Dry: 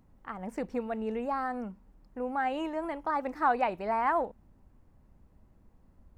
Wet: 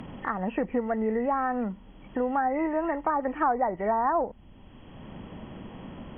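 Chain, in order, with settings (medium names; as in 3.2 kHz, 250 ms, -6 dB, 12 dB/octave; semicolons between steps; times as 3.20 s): knee-point frequency compression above 1.8 kHz 4:1; low-pass that closes with the level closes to 1.1 kHz, closed at -25.5 dBFS; three bands compressed up and down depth 70%; trim +5.5 dB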